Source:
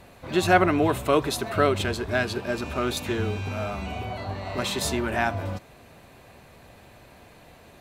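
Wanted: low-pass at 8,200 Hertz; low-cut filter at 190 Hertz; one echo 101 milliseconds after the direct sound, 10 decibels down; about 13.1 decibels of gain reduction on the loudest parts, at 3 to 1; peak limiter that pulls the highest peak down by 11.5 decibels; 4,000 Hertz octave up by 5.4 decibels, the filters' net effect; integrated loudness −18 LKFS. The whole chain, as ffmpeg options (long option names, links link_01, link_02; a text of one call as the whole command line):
ffmpeg -i in.wav -af "highpass=190,lowpass=8200,equalizer=frequency=4000:width_type=o:gain=6.5,acompressor=threshold=-31dB:ratio=3,alimiter=level_in=3.5dB:limit=-24dB:level=0:latency=1,volume=-3.5dB,aecho=1:1:101:0.316,volume=18.5dB" out.wav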